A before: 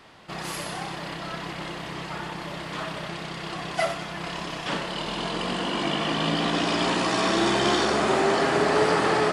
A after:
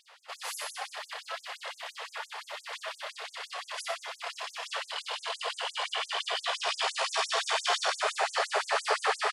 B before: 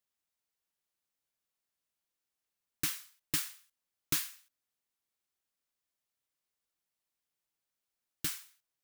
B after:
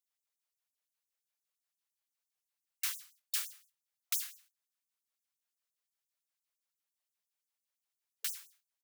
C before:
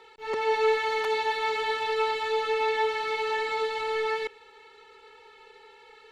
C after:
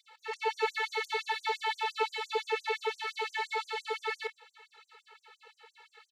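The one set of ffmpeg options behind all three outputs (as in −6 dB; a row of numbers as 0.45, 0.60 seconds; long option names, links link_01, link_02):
-af "aecho=1:1:27|52:0.299|0.133,afftfilt=real='re*gte(b*sr/1024,400*pow(6100/400,0.5+0.5*sin(2*PI*5.8*pts/sr)))':imag='im*gte(b*sr/1024,400*pow(6100/400,0.5+0.5*sin(2*PI*5.8*pts/sr)))':win_size=1024:overlap=0.75,volume=-2dB"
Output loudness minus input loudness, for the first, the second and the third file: −6.5, −2.0, −6.5 LU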